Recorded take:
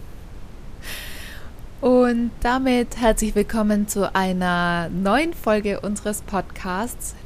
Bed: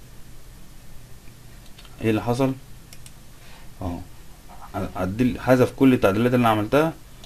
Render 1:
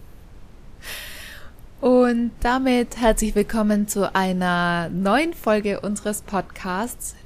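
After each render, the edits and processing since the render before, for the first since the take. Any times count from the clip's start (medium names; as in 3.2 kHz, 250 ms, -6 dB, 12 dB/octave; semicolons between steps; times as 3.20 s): noise print and reduce 6 dB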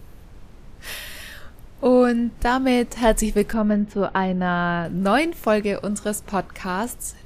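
3.53–4.85 s: distance through air 330 m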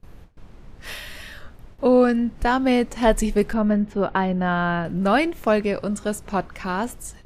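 gate with hold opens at -34 dBFS; treble shelf 7.1 kHz -9 dB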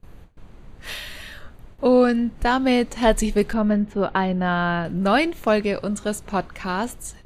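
band-stop 5.3 kHz, Q 6.2; dynamic bell 4.5 kHz, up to +6 dB, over -45 dBFS, Q 1.1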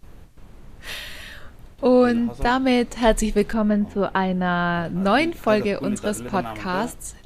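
add bed -14 dB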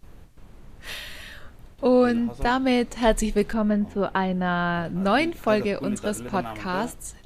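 trim -2.5 dB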